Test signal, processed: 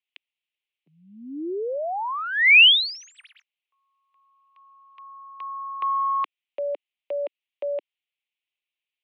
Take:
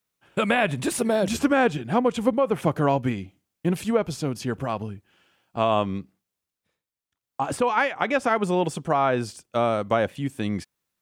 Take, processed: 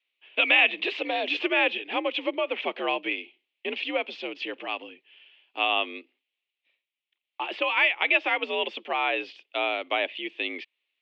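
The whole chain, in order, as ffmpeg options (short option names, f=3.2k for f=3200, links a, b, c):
-af "aexciter=amount=7.9:drive=9.3:freq=2.2k,highpass=f=250:t=q:w=0.5412,highpass=f=250:t=q:w=1.307,lowpass=f=2.8k:t=q:w=0.5176,lowpass=f=2.8k:t=q:w=0.7071,lowpass=f=2.8k:t=q:w=1.932,afreqshift=65,volume=-6.5dB"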